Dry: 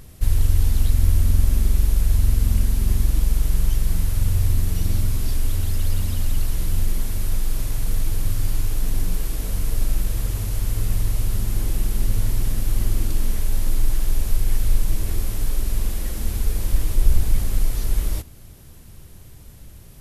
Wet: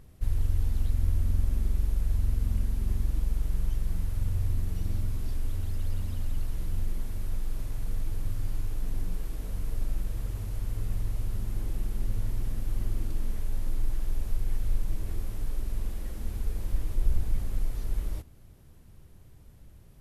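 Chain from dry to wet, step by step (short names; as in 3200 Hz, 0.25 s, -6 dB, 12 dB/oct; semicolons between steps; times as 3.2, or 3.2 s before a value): high shelf 2600 Hz -9 dB; gain -9 dB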